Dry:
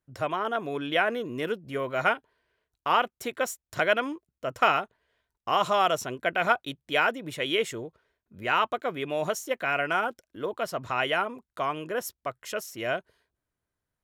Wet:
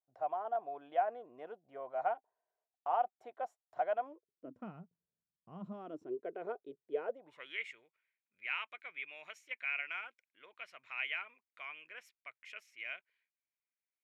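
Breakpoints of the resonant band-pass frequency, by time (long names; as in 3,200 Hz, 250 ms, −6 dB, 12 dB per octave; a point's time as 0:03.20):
resonant band-pass, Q 7.7
0:04.02 740 Hz
0:04.75 170 Hz
0:05.51 170 Hz
0:06.22 420 Hz
0:07.01 420 Hz
0:07.65 2,300 Hz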